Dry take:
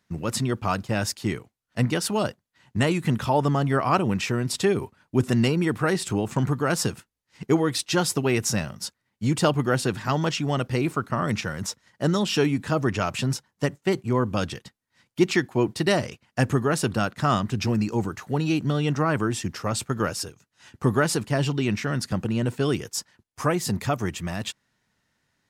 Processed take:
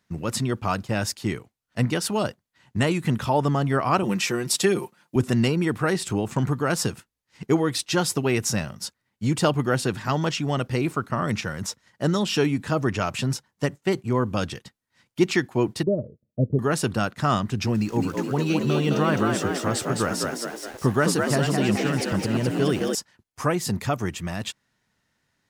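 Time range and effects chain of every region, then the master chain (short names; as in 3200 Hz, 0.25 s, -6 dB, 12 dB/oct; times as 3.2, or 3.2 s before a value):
4.03–5.16 HPF 180 Hz + high shelf 5000 Hz +8 dB + comb 5.7 ms, depth 52%
15.83–16.59 rippled Chebyshev low-pass 630 Hz, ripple 3 dB + transient shaper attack +2 dB, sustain -5 dB
17.75–22.95 frequency-shifting echo 0.211 s, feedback 58%, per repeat +61 Hz, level -4 dB + sample gate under -40.5 dBFS
whole clip: dry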